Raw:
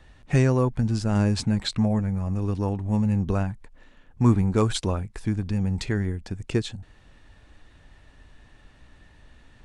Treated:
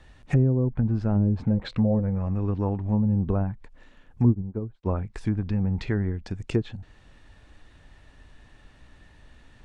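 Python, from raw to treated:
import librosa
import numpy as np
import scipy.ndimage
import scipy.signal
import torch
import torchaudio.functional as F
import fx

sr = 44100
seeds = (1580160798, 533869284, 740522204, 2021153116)

y = fx.env_lowpass_down(x, sr, base_hz=360.0, full_db=-16.5)
y = fx.peak_eq(y, sr, hz=510.0, db=11.0, octaves=0.24, at=(1.44, 2.26))
y = fx.upward_expand(y, sr, threshold_db=-35.0, expansion=2.5, at=(4.28, 4.85), fade=0.02)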